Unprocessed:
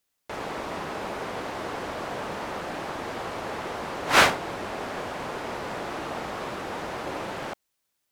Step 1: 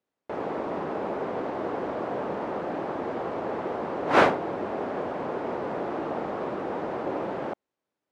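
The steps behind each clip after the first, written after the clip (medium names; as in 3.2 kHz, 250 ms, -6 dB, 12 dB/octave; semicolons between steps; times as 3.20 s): band-pass filter 370 Hz, Q 0.72; trim +5.5 dB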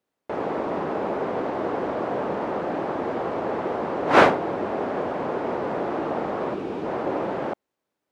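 time-frequency box 6.54–6.85 s, 470–2200 Hz -7 dB; trim +4 dB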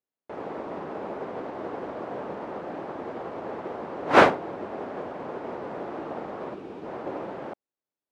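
upward expansion 1.5:1, over -41 dBFS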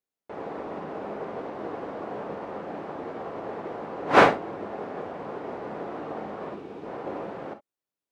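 gated-style reverb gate 80 ms flat, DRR 6.5 dB; trim -1 dB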